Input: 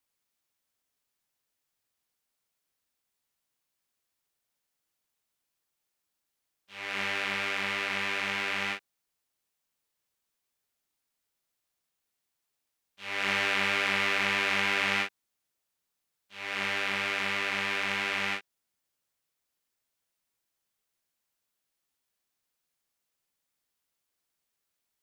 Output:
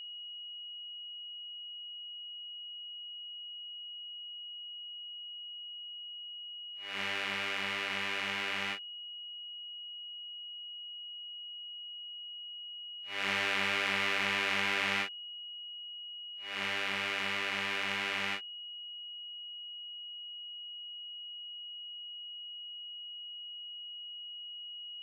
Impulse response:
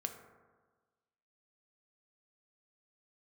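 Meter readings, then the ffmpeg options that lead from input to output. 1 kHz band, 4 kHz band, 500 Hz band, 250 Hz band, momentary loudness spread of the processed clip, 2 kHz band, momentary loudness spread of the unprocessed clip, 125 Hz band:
-4.0 dB, +2.5 dB, -4.0 dB, -4.0 dB, 12 LU, -4.0 dB, 10 LU, -4.0 dB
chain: -af "agate=range=0.0224:threshold=0.0316:ratio=3:detection=peak,aeval=exprs='val(0)+0.0126*sin(2*PI*2900*n/s)':c=same,volume=0.631"

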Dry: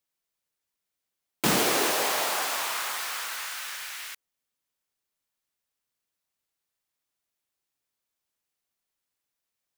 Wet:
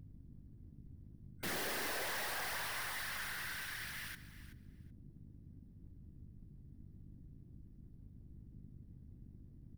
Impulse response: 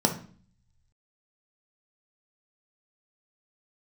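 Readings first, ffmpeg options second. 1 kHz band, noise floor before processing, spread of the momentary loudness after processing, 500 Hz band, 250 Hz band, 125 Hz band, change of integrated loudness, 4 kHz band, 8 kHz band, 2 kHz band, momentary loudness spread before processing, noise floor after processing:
-14.5 dB, -85 dBFS, 20 LU, -15.5 dB, -15.5 dB, -6.0 dB, -13.5 dB, -13.5 dB, -15.5 dB, -8.5 dB, 14 LU, -59 dBFS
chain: -filter_complex "[0:a]superequalizer=11b=2.24:15b=0.398,aeval=exprs='val(0)+0.00631*(sin(2*PI*50*n/s)+sin(2*PI*2*50*n/s)/2+sin(2*PI*3*50*n/s)/3+sin(2*PI*4*50*n/s)/4+sin(2*PI*5*50*n/s)/5)':c=same,afftfilt=real='hypot(re,im)*cos(2*PI*random(0))':imag='hypot(re,im)*sin(2*PI*random(1))':win_size=512:overlap=0.75,aeval=exprs='(tanh(63.1*val(0)+0.4)-tanh(0.4))/63.1':c=same,asplit=2[s0][s1];[s1]aecho=0:1:378|756:0.178|0.0285[s2];[s0][s2]amix=inputs=2:normalize=0,volume=0.841"

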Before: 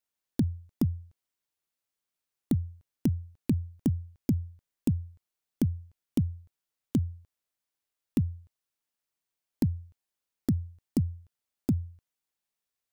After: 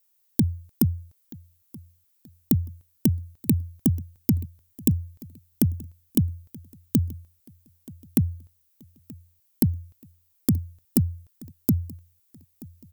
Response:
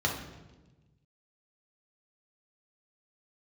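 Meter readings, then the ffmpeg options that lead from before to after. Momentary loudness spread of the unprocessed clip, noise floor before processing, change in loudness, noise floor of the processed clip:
12 LU, under -85 dBFS, +5.5 dB, -67 dBFS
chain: -af "aemphasis=mode=production:type=50fm,aecho=1:1:929|1858|2787:0.0794|0.0302|0.0115,volume=1.78"

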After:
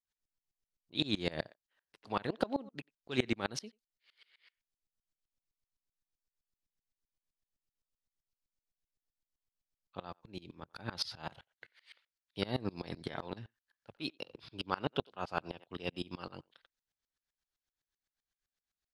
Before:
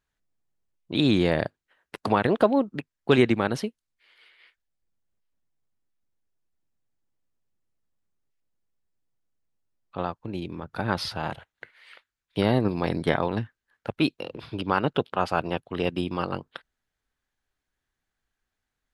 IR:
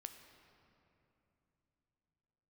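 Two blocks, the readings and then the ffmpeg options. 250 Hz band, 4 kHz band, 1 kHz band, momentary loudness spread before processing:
-14.5 dB, -6.5 dB, -13.5 dB, 15 LU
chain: -filter_complex "[0:a]equalizer=f=5000:t=o:w=1.6:g=11,asplit=2[s0][s1];[s1]adelay=90,highpass=300,lowpass=3400,asoftclip=type=hard:threshold=0.282,volume=0.0891[s2];[s0][s2]amix=inputs=2:normalize=0,aeval=exprs='val(0)*pow(10,-25*if(lt(mod(-7.8*n/s,1),2*abs(-7.8)/1000),1-mod(-7.8*n/s,1)/(2*abs(-7.8)/1000),(mod(-7.8*n/s,1)-2*abs(-7.8)/1000)/(1-2*abs(-7.8)/1000))/20)':c=same,volume=0.422"

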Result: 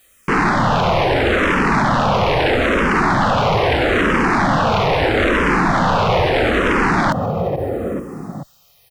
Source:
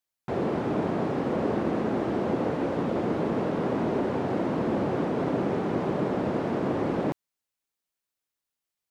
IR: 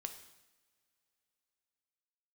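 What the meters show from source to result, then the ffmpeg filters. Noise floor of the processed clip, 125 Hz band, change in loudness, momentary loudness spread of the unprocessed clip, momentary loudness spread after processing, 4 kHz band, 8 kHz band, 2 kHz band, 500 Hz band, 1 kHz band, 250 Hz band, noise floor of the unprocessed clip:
-54 dBFS, +12.5 dB, +12.0 dB, 1 LU, 7 LU, +23.0 dB, no reading, +22.5 dB, +10.0 dB, +17.0 dB, +7.5 dB, under -85 dBFS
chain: -filter_complex "[0:a]lowshelf=f=350:g=4,bandreject=f=620:w=12,aecho=1:1:1.6:0.52,asplit=2[s0][s1];[s1]adelay=435,lowpass=f=2200:p=1,volume=0.0841,asplit=2[s2][s3];[s3]adelay=435,lowpass=f=2200:p=1,volume=0.46,asplit=2[s4][s5];[s5]adelay=435,lowpass=f=2200:p=1,volume=0.46[s6];[s2][s4][s6]amix=inputs=3:normalize=0[s7];[s0][s7]amix=inputs=2:normalize=0,aeval=exprs='0.237*sin(PI/2*6.31*val(0)/0.237)':c=same,alimiter=level_in=15.8:limit=0.891:release=50:level=0:latency=1,asplit=2[s8][s9];[s9]afreqshift=-0.77[s10];[s8][s10]amix=inputs=2:normalize=1,volume=0.376"

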